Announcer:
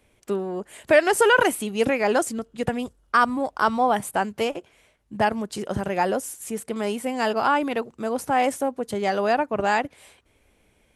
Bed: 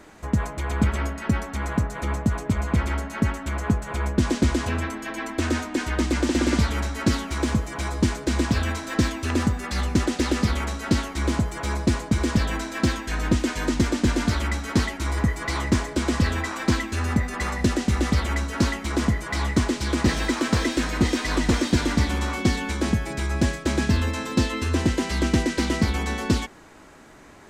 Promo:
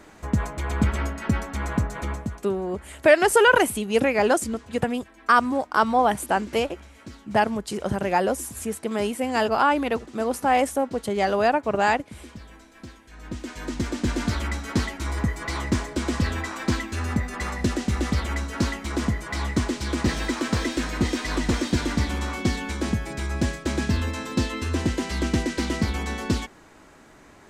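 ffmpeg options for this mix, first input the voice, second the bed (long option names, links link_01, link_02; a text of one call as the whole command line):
ffmpeg -i stem1.wav -i stem2.wav -filter_complex "[0:a]adelay=2150,volume=1dB[link_01];[1:a]volume=17.5dB,afade=type=out:start_time=1.96:duration=0.48:silence=0.1,afade=type=in:start_time=13.11:duration=1.15:silence=0.125893[link_02];[link_01][link_02]amix=inputs=2:normalize=0" out.wav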